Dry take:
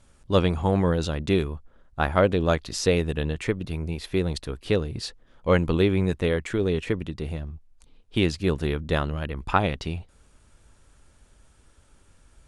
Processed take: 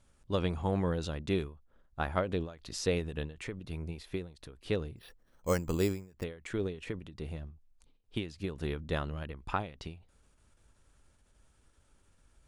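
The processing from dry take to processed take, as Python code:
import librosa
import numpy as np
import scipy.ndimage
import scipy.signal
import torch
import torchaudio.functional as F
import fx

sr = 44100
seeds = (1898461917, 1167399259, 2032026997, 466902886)

y = fx.resample_bad(x, sr, factor=6, down='filtered', up='hold', at=(4.96, 6.24))
y = fx.end_taper(y, sr, db_per_s=130.0)
y = y * 10.0 ** (-8.5 / 20.0)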